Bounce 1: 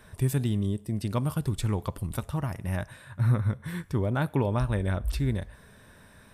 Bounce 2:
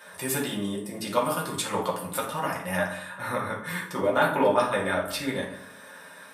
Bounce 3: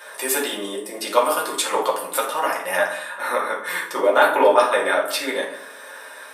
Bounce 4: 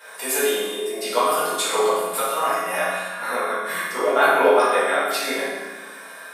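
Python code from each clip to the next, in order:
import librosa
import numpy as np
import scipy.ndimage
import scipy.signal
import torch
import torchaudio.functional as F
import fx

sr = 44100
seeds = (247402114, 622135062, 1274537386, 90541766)

y1 = scipy.signal.sosfilt(scipy.signal.butter(2, 540.0, 'highpass', fs=sr, output='sos'), x)
y1 = fx.rev_fdn(y1, sr, rt60_s=0.67, lf_ratio=1.35, hf_ratio=0.6, size_ms=33.0, drr_db=-5.0)
y1 = y1 * 10.0 ** (4.5 / 20.0)
y2 = scipy.signal.sosfilt(scipy.signal.butter(4, 340.0, 'highpass', fs=sr, output='sos'), y1)
y2 = y2 * 10.0 ** (7.5 / 20.0)
y3 = fx.rev_fdn(y2, sr, rt60_s=1.2, lf_ratio=1.35, hf_ratio=0.9, size_ms=13.0, drr_db=-6.5)
y3 = y3 * 10.0 ** (-6.0 / 20.0)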